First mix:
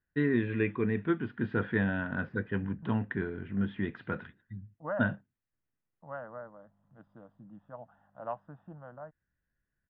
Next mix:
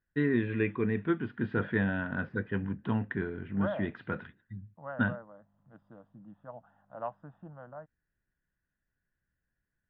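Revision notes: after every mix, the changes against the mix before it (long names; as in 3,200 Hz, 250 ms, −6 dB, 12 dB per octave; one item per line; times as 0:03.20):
second voice: entry −1.25 s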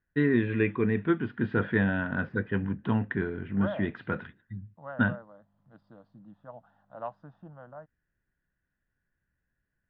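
first voice +3.5 dB
second voice: remove Savitzky-Golay smoothing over 25 samples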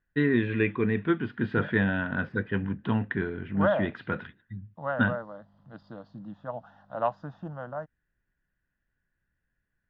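second voice +9.5 dB
master: add high-shelf EQ 4,200 Hz +11.5 dB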